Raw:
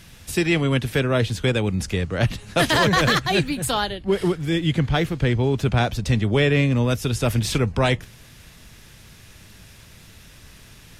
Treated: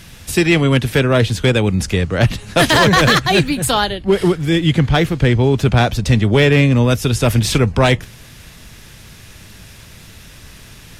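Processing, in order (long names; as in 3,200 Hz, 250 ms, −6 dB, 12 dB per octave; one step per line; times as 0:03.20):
gain into a clipping stage and back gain 12 dB
level +7 dB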